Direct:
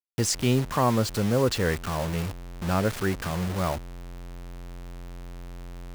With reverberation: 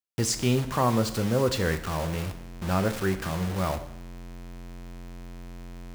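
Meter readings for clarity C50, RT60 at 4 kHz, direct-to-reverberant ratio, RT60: 12.5 dB, 0.70 s, 8.0 dB, 0.70 s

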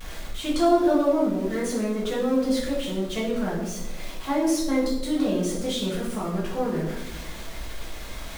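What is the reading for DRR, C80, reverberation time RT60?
−6.0 dB, 7.0 dB, 0.95 s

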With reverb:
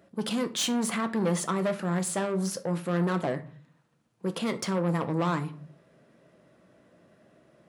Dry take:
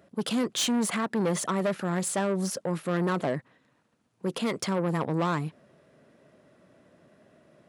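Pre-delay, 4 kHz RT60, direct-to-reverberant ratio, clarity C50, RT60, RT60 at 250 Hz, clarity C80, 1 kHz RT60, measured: 6 ms, 0.30 s, 8.0 dB, 16.0 dB, 0.50 s, 0.75 s, 21.0 dB, 0.50 s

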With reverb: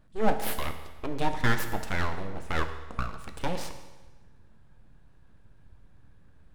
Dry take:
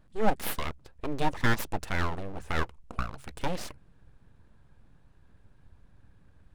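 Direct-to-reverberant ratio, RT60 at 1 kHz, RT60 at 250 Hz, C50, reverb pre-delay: 7.0 dB, 1.2 s, 1.2 s, 9.5 dB, 11 ms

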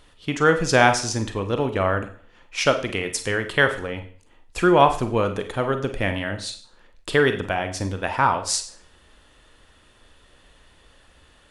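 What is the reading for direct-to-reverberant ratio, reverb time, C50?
7.0 dB, 0.50 s, 10.0 dB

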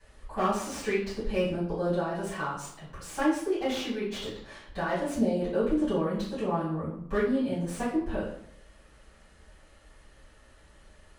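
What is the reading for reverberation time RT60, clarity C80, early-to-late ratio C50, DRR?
0.70 s, 7.5 dB, 3.5 dB, −14.0 dB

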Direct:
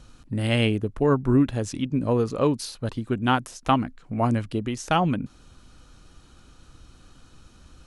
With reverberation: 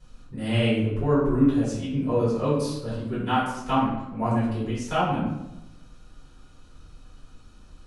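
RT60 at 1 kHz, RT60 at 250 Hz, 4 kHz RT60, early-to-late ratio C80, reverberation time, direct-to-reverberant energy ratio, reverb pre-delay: 0.85 s, 1.1 s, 0.65 s, 4.5 dB, 0.95 s, −11.5 dB, 3 ms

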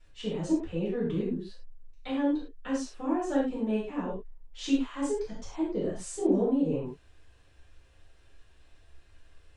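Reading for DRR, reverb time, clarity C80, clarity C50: −10.0 dB, non-exponential decay, 7.5 dB, 2.5 dB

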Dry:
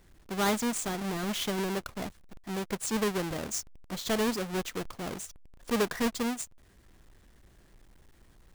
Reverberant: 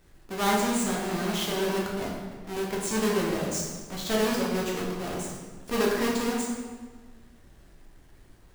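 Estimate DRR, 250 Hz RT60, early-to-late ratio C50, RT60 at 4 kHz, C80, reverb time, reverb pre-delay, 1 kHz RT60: −4.0 dB, 1.8 s, 1.0 dB, 1.1 s, 3.0 dB, 1.5 s, 6 ms, 1.4 s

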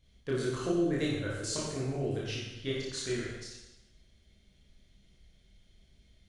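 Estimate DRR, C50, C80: −6.5 dB, −0.5 dB, 2.5 dB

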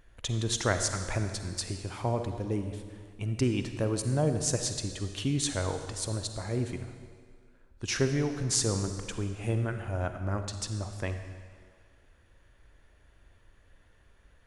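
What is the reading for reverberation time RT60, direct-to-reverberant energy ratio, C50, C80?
1.9 s, 7.0 dB, 7.5 dB, 8.5 dB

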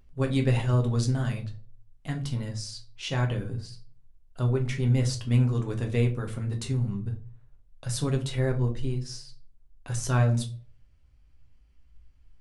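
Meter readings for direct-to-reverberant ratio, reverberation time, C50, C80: 2.5 dB, 0.45 s, 13.0 dB, 18.5 dB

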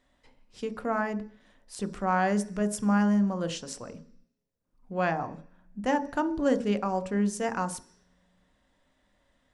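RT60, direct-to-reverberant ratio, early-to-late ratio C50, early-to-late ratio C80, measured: 0.50 s, 9.0 dB, 16.5 dB, 19.0 dB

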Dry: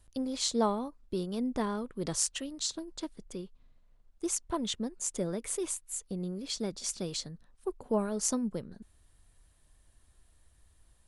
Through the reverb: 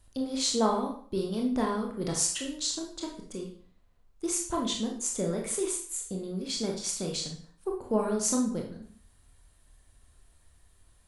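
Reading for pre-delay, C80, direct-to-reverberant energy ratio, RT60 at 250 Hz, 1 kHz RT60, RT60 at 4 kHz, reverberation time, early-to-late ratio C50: 22 ms, 10.5 dB, 0.0 dB, 0.50 s, 0.50 s, 0.45 s, 0.50 s, 5.5 dB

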